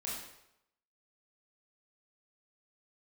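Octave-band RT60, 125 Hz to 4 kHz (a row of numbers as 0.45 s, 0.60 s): 0.75 s, 0.70 s, 0.80 s, 0.80 s, 0.75 s, 0.70 s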